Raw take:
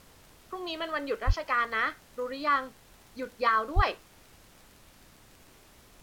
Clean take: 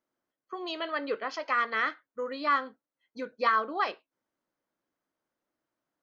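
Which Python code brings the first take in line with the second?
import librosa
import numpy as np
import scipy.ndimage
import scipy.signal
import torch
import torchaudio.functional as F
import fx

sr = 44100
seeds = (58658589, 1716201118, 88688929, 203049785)

y = fx.fix_declick_ar(x, sr, threshold=6.5)
y = fx.highpass(y, sr, hz=140.0, slope=24, at=(1.26, 1.38), fade=0.02)
y = fx.highpass(y, sr, hz=140.0, slope=24, at=(3.75, 3.87), fade=0.02)
y = fx.noise_reduce(y, sr, print_start_s=5.49, print_end_s=5.99, reduce_db=30.0)
y = fx.fix_level(y, sr, at_s=3.83, step_db=-4.0)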